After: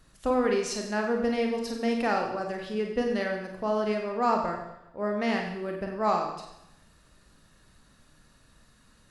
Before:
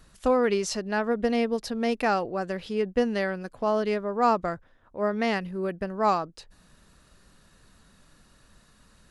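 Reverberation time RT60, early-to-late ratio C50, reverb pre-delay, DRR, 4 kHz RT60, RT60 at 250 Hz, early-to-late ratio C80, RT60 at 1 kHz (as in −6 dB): 0.85 s, 4.0 dB, 31 ms, 1.5 dB, 0.85 s, 0.85 s, 6.0 dB, 0.85 s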